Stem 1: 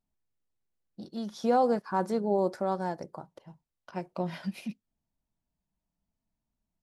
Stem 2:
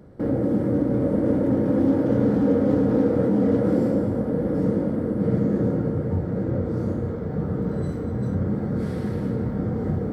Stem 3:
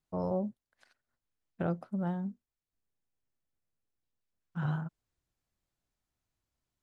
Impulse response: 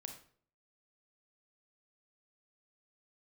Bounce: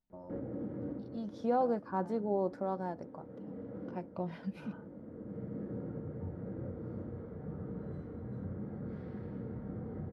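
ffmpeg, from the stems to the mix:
-filter_complex "[0:a]lowpass=frequency=1400:poles=1,volume=-5dB,asplit=2[link_01][link_02];[1:a]alimiter=limit=-14.5dB:level=0:latency=1:release=311,lowpass=2600,adelay=100,volume=-17.5dB,asplit=2[link_03][link_04];[link_04]volume=-12dB[link_05];[2:a]lowpass=frequency=1500:poles=1,aecho=1:1:3.3:0.74,acompressor=threshold=-35dB:ratio=2.5,volume=-12.5dB[link_06];[link_02]apad=whole_len=450783[link_07];[link_03][link_07]sidechaincompress=threshold=-52dB:ratio=4:attack=9.5:release=781[link_08];[3:a]atrim=start_sample=2205[link_09];[link_05][link_09]afir=irnorm=-1:irlink=0[link_10];[link_01][link_08][link_06][link_10]amix=inputs=4:normalize=0"

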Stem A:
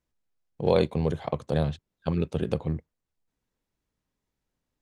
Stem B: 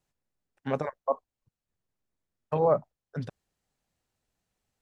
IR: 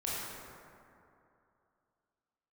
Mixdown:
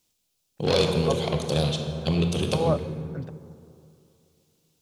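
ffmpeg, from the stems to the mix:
-filter_complex "[0:a]highpass=82,asoftclip=type=tanh:threshold=-19.5dB,aexciter=amount=7.5:drive=6.7:freq=2600,volume=0.5dB,asplit=2[link_01][link_02];[link_02]volume=-4.5dB[link_03];[1:a]volume=-1.5dB[link_04];[2:a]atrim=start_sample=2205[link_05];[link_03][link_05]afir=irnorm=-1:irlink=0[link_06];[link_01][link_04][link_06]amix=inputs=3:normalize=0,highshelf=frequency=2900:gain=-7.5"

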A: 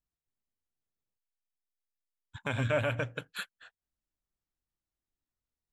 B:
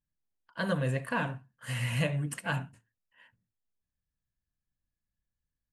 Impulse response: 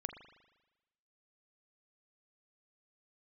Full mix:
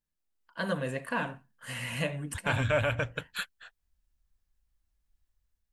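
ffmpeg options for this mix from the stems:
-filter_complex "[0:a]asubboost=boost=9:cutoff=100,dynaudnorm=framelen=150:gausssize=5:maxgain=13dB,volume=-9dB[link_01];[1:a]volume=0dB[link_02];[link_01][link_02]amix=inputs=2:normalize=0,equalizer=frequency=120:width=2.2:gain=-10"

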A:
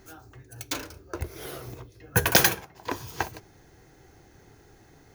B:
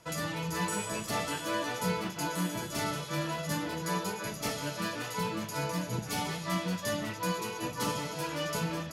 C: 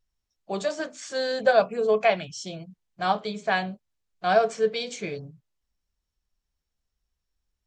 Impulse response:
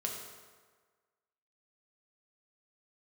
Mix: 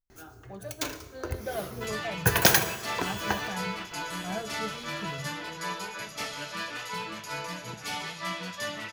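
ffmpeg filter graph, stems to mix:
-filter_complex "[0:a]adelay=100,volume=-4dB,asplit=2[link_01][link_02];[link_02]volume=-6.5dB[link_03];[1:a]equalizer=frequency=2400:width=0.3:gain=13,adelay=1750,volume=-9.5dB[link_04];[2:a]lowpass=frequency=1300:poles=1,asubboost=boost=9:cutoff=180,volume=-12.5dB[link_05];[3:a]atrim=start_sample=2205[link_06];[link_03][link_06]afir=irnorm=-1:irlink=0[link_07];[link_01][link_04][link_05][link_07]amix=inputs=4:normalize=0"

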